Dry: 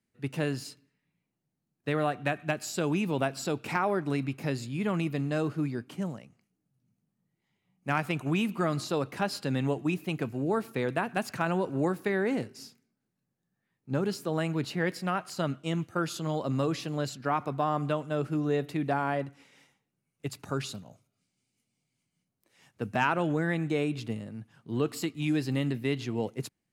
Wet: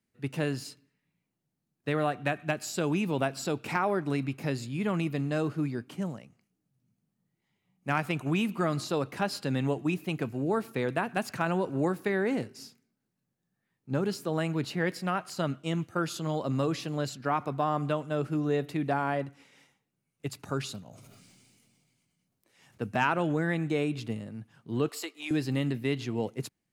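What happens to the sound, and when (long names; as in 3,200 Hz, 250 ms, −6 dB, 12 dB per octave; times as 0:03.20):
0:20.83–0:22.84: level that may fall only so fast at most 23 dB per second
0:24.89–0:25.31: high-pass filter 420 Hz 24 dB per octave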